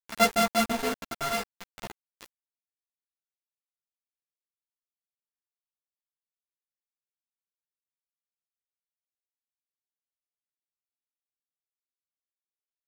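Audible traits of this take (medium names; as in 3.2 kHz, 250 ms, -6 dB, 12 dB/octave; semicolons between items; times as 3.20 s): a buzz of ramps at a fixed pitch in blocks of 64 samples; chopped level 0.54 Hz, depth 65%, duty 50%; a quantiser's noise floor 6-bit, dither none; a shimmering, thickened sound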